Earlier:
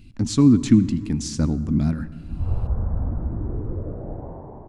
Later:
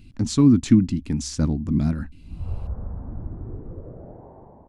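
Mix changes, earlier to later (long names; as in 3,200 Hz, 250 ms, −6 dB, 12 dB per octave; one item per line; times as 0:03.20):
background −3.5 dB
reverb: off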